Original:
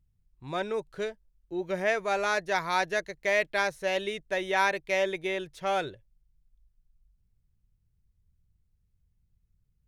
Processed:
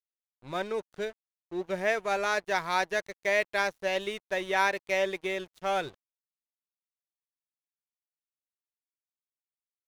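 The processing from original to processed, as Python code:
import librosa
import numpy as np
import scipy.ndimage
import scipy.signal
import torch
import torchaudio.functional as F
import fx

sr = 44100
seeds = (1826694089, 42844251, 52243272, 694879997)

y = np.sign(x) * np.maximum(np.abs(x) - 10.0 ** (-46.0 / 20.0), 0.0)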